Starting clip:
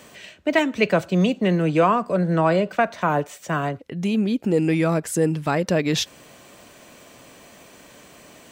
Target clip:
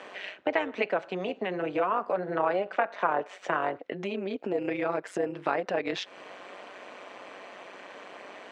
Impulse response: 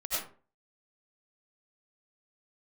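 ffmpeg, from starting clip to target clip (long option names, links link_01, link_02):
-af "acompressor=threshold=-28dB:ratio=5,tremolo=f=190:d=0.75,highpass=450,lowpass=2400,volume=9dB"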